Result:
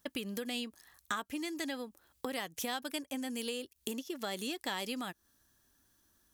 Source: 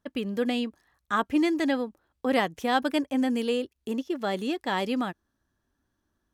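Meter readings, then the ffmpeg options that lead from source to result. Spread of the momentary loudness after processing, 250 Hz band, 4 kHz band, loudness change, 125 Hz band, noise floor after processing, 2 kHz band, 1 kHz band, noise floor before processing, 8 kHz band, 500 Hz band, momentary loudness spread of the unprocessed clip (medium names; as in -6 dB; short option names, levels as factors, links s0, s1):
6 LU, -13.0 dB, -4.0 dB, -11.0 dB, -10.5 dB, -75 dBFS, -8.5 dB, -12.5 dB, -79 dBFS, +4.0 dB, -12.5 dB, 8 LU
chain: -af "acompressor=threshold=0.0141:ratio=12,crystalizer=i=5.5:c=0"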